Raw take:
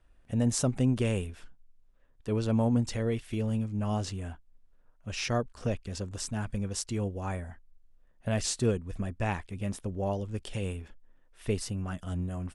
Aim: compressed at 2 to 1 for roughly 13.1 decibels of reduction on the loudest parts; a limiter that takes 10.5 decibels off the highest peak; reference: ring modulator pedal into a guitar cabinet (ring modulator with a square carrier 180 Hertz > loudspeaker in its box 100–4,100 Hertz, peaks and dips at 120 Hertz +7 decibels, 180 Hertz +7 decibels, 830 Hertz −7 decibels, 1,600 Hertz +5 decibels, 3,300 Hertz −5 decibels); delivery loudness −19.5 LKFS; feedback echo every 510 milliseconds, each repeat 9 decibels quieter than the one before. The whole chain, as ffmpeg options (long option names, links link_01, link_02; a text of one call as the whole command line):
ffmpeg -i in.wav -af "acompressor=threshold=-47dB:ratio=2,alimiter=level_in=11dB:limit=-24dB:level=0:latency=1,volume=-11dB,aecho=1:1:510|1020|1530|2040:0.355|0.124|0.0435|0.0152,aeval=exprs='val(0)*sgn(sin(2*PI*180*n/s))':channel_layout=same,highpass=100,equalizer=frequency=120:width_type=q:width=4:gain=7,equalizer=frequency=180:width_type=q:width=4:gain=7,equalizer=frequency=830:width_type=q:width=4:gain=-7,equalizer=frequency=1600:width_type=q:width=4:gain=5,equalizer=frequency=3300:width_type=q:width=4:gain=-5,lowpass=frequency=4100:width=0.5412,lowpass=frequency=4100:width=1.3066,volume=26.5dB" out.wav